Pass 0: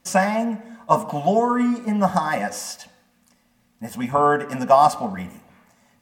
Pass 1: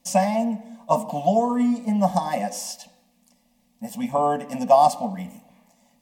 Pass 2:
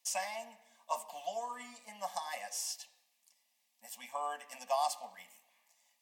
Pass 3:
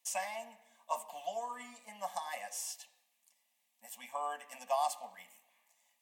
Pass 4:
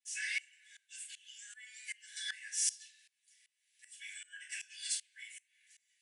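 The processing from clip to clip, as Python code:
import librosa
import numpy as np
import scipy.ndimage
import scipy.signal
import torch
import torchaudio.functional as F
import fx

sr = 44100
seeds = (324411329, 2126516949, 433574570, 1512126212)

y1 = fx.fixed_phaser(x, sr, hz=380.0, stages=6)
y2 = scipy.signal.sosfilt(scipy.signal.butter(2, 1400.0, 'highpass', fs=sr, output='sos'), y1)
y2 = F.gain(torch.from_numpy(y2), -6.0).numpy()
y3 = fx.peak_eq(y2, sr, hz=5000.0, db=-6.5, octaves=0.58)
y4 = fx.brickwall_bandpass(y3, sr, low_hz=1400.0, high_hz=11000.0)
y4 = fx.room_shoebox(y4, sr, seeds[0], volume_m3=140.0, walls='furnished', distance_m=4.1)
y4 = fx.tremolo_decay(y4, sr, direction='swelling', hz=2.6, depth_db=23)
y4 = F.gain(torch.from_numpy(y4), 5.5).numpy()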